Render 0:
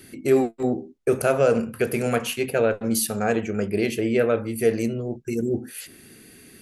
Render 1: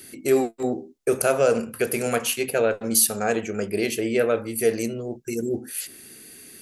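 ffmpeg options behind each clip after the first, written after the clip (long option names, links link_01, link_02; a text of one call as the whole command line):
ffmpeg -i in.wav -af "bass=frequency=250:gain=-6,treble=frequency=4000:gain=7" out.wav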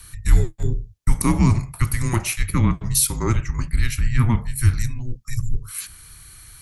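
ffmpeg -i in.wav -af "highpass=frequency=310:width_type=q:width=3.4,afreqshift=-360" out.wav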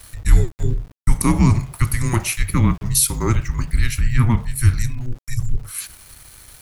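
ffmpeg -i in.wav -af "aeval=exprs='val(0)*gte(abs(val(0)),0.00841)':channel_layout=same,volume=2dB" out.wav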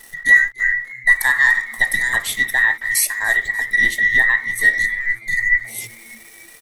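ffmpeg -i in.wav -filter_complex "[0:a]afftfilt=real='real(if(between(b,1,1012),(2*floor((b-1)/92)+1)*92-b,b),0)':imag='imag(if(between(b,1,1012),(2*floor((b-1)/92)+1)*92-b,b),0)*if(between(b,1,1012),-1,1)':win_size=2048:overlap=0.75,asplit=5[link_01][link_02][link_03][link_04][link_05];[link_02]adelay=294,afreqshift=110,volume=-21.5dB[link_06];[link_03]adelay=588,afreqshift=220,volume=-26.7dB[link_07];[link_04]adelay=882,afreqshift=330,volume=-31.9dB[link_08];[link_05]adelay=1176,afreqshift=440,volume=-37.1dB[link_09];[link_01][link_06][link_07][link_08][link_09]amix=inputs=5:normalize=0,volume=-1dB" out.wav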